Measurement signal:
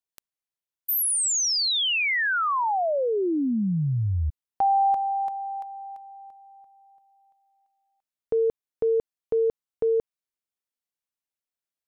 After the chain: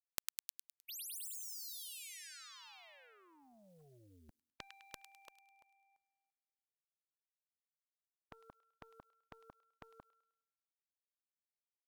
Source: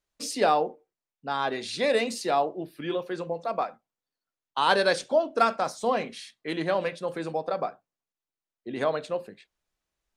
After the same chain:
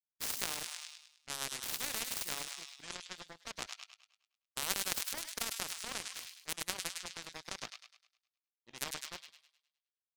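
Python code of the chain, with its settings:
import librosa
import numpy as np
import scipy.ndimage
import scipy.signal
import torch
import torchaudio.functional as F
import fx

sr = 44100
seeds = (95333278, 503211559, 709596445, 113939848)

p1 = fx.tone_stack(x, sr, knobs='5-5-5')
p2 = fx.over_compress(p1, sr, threshold_db=-40.0, ratio=-1.0)
p3 = p1 + (p2 * librosa.db_to_amplitude(-1.0))
p4 = fx.power_curve(p3, sr, exponent=3.0)
p5 = p4 + fx.echo_wet_highpass(p4, sr, ms=103, feedback_pct=42, hz=3300.0, wet_db=-8.0, dry=0)
p6 = fx.spectral_comp(p5, sr, ratio=4.0)
y = p6 * librosa.db_to_amplitude(9.5)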